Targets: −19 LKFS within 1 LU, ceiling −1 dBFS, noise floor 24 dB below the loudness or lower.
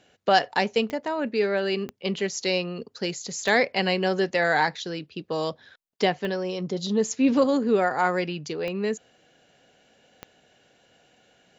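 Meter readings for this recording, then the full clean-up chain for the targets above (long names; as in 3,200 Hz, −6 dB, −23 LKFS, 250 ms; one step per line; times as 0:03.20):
number of clicks 6; integrated loudness −25.5 LKFS; sample peak −6.5 dBFS; target loudness −19.0 LKFS
→ click removal
level +6.5 dB
brickwall limiter −1 dBFS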